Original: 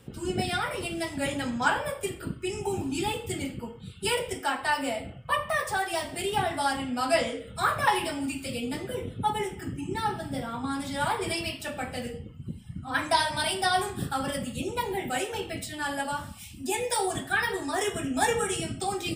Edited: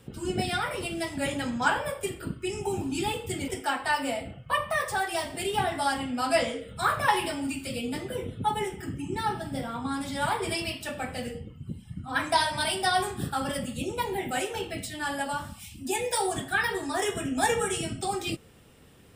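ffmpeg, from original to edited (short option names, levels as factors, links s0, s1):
-filter_complex "[0:a]asplit=2[s0][s1];[s0]atrim=end=3.482[s2];[s1]atrim=start=4.268[s3];[s2][s3]acrossfade=d=0.004:c1=hsin:c2=hsin"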